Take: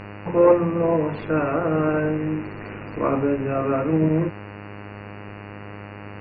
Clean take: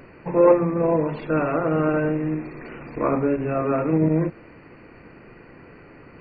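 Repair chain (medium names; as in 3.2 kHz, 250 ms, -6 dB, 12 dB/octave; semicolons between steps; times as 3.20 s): de-hum 102.2 Hz, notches 28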